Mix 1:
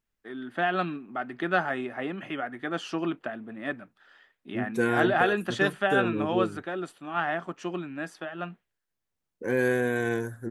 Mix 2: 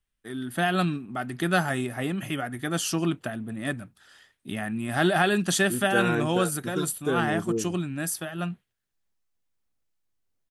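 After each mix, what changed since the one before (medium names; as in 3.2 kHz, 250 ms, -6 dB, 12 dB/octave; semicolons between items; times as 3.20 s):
first voice: remove band-pass 300–2400 Hz; second voice: entry +1.15 s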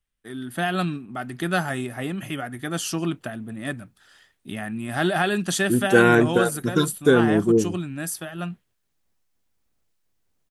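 second voice +10.5 dB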